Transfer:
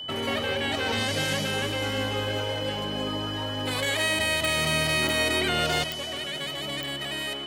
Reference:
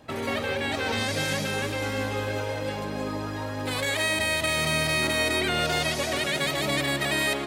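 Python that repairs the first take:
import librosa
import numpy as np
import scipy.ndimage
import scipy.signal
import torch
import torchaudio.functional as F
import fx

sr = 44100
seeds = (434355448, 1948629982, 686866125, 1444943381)

y = fx.fix_declick_ar(x, sr, threshold=10.0)
y = fx.notch(y, sr, hz=3000.0, q=30.0)
y = fx.fix_level(y, sr, at_s=5.84, step_db=8.0)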